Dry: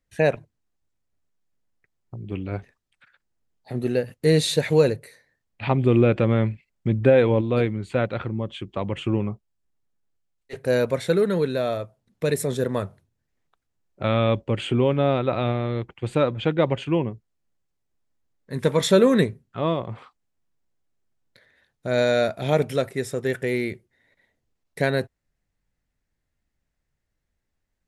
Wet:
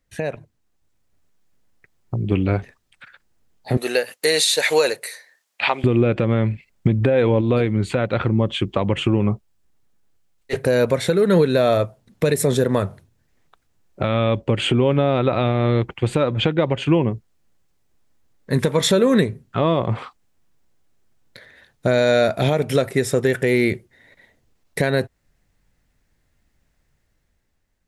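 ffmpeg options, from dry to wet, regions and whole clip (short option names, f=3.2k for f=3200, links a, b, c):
-filter_complex "[0:a]asettb=1/sr,asplit=3[a][b][c];[a]atrim=end=3.774[d];[b]atrim=start=3.77:end=5.84,asetpts=PTS-STARTPTS,afade=t=in:d=0.004:c=qsin,afade=t=out:st=2.066:d=0.004:c=qsin,highpass=690,equalizer=f=8.7k:w=0.33:g=6[e];[c]atrim=start=5.836[f];[d][e]acrossfade=d=0.004:c1=hsin:c2=qsin[g];[g][f]acrossfade=d=0.004:c1=qsin:c2=hsin,acompressor=threshold=-23dB:ratio=4,alimiter=limit=-19dB:level=0:latency=1:release=296,dynaudnorm=f=200:g=9:m=6dB,volume=6.5dB"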